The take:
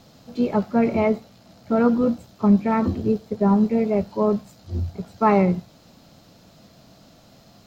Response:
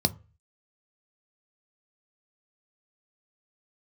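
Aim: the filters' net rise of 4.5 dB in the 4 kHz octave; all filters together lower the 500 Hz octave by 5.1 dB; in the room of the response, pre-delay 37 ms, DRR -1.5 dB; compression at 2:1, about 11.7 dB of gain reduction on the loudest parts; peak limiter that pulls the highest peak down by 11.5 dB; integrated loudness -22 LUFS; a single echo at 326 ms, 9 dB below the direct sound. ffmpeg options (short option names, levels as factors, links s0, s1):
-filter_complex "[0:a]equalizer=f=500:t=o:g=-6.5,equalizer=f=4000:t=o:g=5.5,acompressor=threshold=0.02:ratio=2,alimiter=level_in=1.88:limit=0.0631:level=0:latency=1,volume=0.531,aecho=1:1:326:0.355,asplit=2[s0][s1];[1:a]atrim=start_sample=2205,adelay=37[s2];[s1][s2]afir=irnorm=-1:irlink=0,volume=0.422[s3];[s0][s3]amix=inputs=2:normalize=0,volume=1.78"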